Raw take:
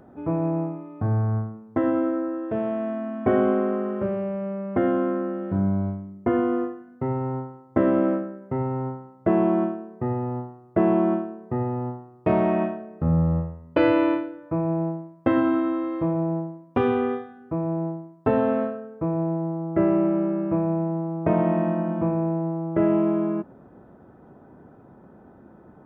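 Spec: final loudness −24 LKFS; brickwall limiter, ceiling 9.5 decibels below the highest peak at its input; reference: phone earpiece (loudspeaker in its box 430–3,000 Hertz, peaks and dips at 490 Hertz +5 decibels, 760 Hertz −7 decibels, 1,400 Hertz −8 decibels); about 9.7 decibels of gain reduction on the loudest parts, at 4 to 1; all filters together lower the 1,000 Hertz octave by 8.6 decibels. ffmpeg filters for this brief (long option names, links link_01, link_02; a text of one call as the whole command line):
ffmpeg -i in.wav -af "equalizer=frequency=1000:width_type=o:gain=-6,acompressor=threshold=-28dB:ratio=4,alimiter=level_in=0.5dB:limit=-24dB:level=0:latency=1,volume=-0.5dB,highpass=430,equalizer=frequency=490:width_type=q:width=4:gain=5,equalizer=frequency=760:width_type=q:width=4:gain=-7,equalizer=frequency=1400:width_type=q:width=4:gain=-8,lowpass=frequency=3000:width=0.5412,lowpass=frequency=3000:width=1.3066,volume=15dB" out.wav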